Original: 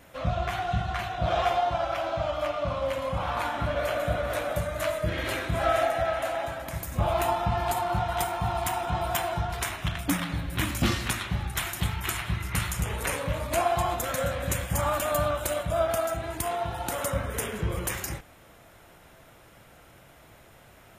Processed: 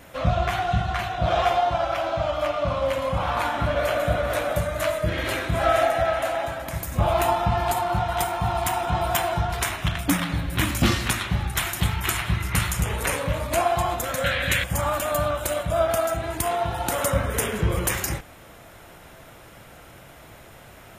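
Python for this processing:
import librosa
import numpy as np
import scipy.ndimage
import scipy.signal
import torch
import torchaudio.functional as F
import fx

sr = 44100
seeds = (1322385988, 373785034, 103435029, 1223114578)

y = fx.band_shelf(x, sr, hz=2500.0, db=13.0, octaves=1.7, at=(14.24, 14.64))
y = fx.rider(y, sr, range_db=10, speed_s=2.0)
y = y * librosa.db_to_amplitude(4.0)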